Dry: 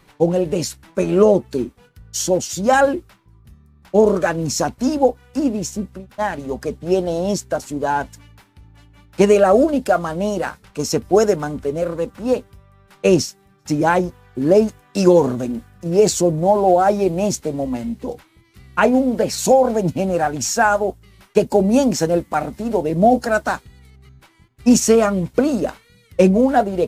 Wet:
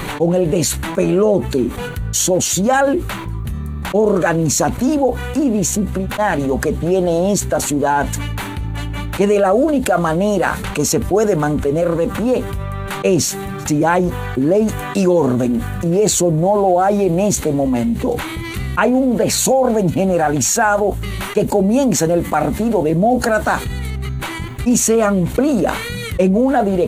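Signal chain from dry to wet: bell 5200 Hz -12.5 dB 0.25 oct; fast leveller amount 70%; gain -3.5 dB

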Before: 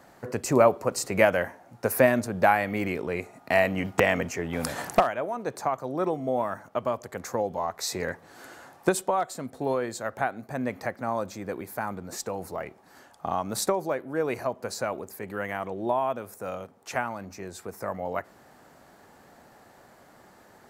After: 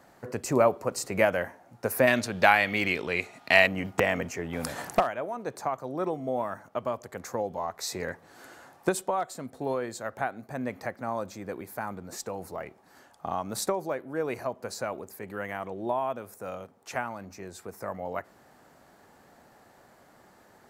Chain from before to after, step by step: 2.07–3.67 bell 3400 Hz +15 dB 1.9 oct; gain -3 dB

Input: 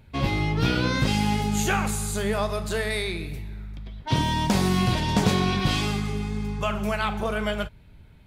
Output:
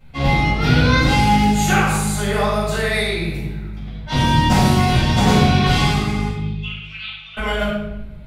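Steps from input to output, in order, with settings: 6.28–7.37 Butterworth band-pass 3100 Hz, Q 2.2; shoebox room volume 370 m³, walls mixed, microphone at 6.8 m; gain -7.5 dB

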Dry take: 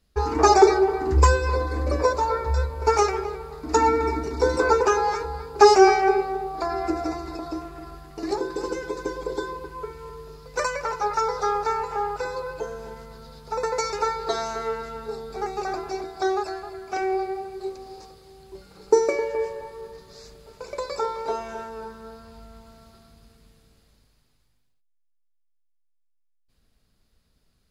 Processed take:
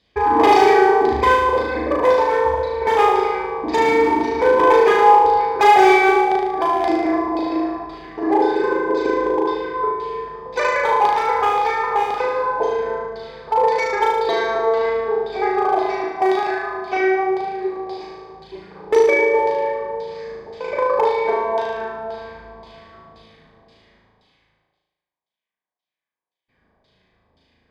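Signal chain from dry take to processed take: low shelf 180 Hz -5 dB; notch 1300 Hz, Q 22; in parallel at +2.5 dB: compressor 10:1, threshold -28 dBFS, peak gain reduction 19.5 dB; on the sum: LFO low-pass saw down 1.9 Hz 700–4000 Hz; overloaded stage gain 12 dB; notch comb 1400 Hz; flutter echo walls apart 6.4 m, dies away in 1 s

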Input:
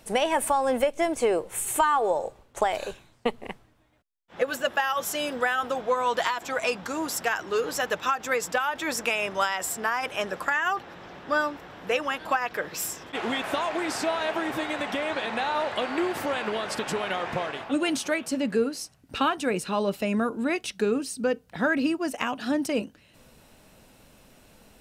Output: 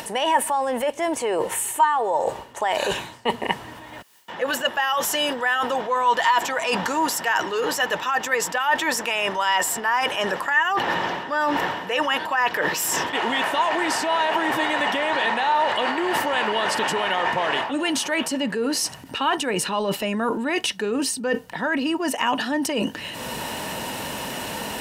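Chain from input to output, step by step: HPF 59 Hz; low shelf 120 Hz -10.5 dB; in parallel at +1.5 dB: upward compressor, threshold -27 dBFS; on the sum: transient shaper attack -1 dB, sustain +6 dB; reverse; compressor 12:1, threshold -28 dBFS, peak gain reduction 18 dB; reverse; small resonant body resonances 940/1800/2900 Hz, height 11 dB, ringing for 30 ms; gain +6.5 dB

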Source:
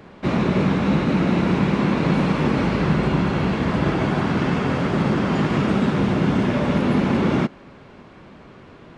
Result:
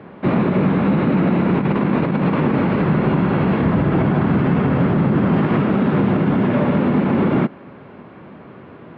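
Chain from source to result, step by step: HPF 110 Hz 12 dB/oct; 1.55–2.43 negative-ratio compressor -21 dBFS, ratio -0.5; 3.63–5.38 low shelf 170 Hz +8.5 dB; limiter -14 dBFS, peak gain reduction 9 dB; air absorption 460 m; gain +6.5 dB

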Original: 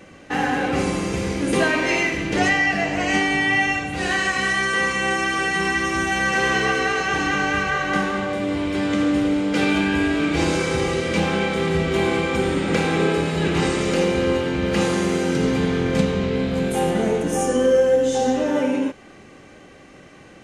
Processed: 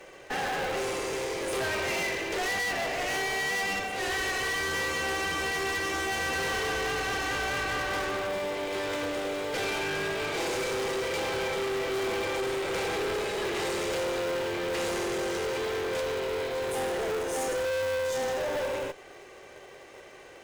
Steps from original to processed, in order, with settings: Chebyshev high-pass 370 Hz, order 5; in parallel at -7 dB: sample-and-hold 30×; on the sum: tube stage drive 28 dB, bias 0.45

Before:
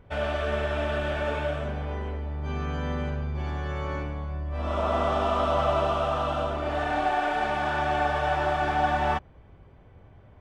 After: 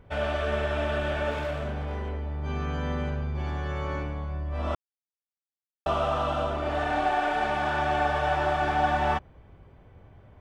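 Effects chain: 1.31–2.09 hard clip -27 dBFS, distortion -26 dB; 4.75–5.86 mute

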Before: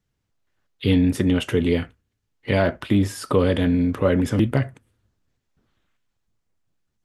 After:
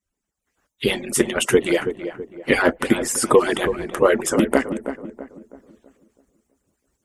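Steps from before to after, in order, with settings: median-filter separation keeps percussive; graphic EQ 125/4000/8000 Hz -9/-8/+10 dB; AGC gain up to 12 dB; darkening echo 0.327 s, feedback 42%, low-pass 1300 Hz, level -9 dB

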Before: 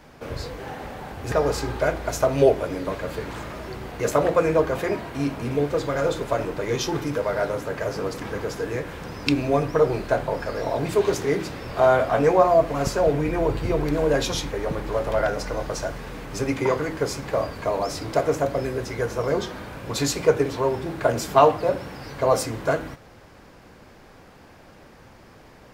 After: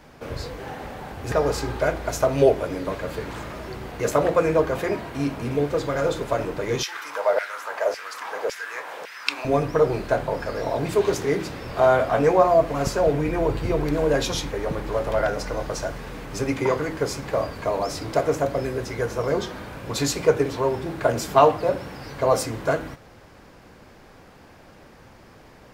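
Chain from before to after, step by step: 6.83–9.45 LFO high-pass saw down 1.8 Hz 510–2200 Hz

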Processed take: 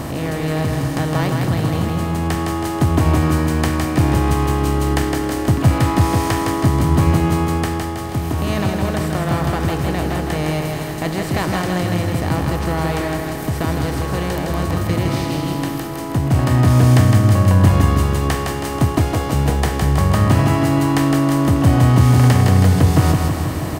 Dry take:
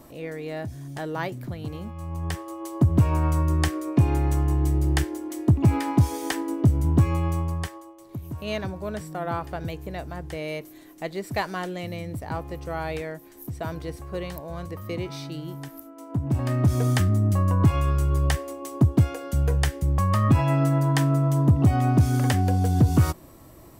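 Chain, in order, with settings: per-bin compression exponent 0.4; feedback echo 0.161 s, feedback 57%, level -4 dB

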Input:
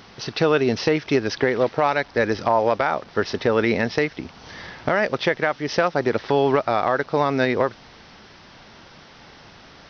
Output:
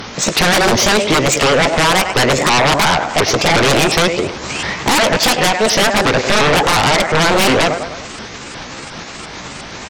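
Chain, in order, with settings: repeated pitch sweeps +8 st, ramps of 0.356 s; feedback echo 0.103 s, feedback 50%, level -16 dB; sine folder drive 16 dB, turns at -6.5 dBFS; gain -2 dB

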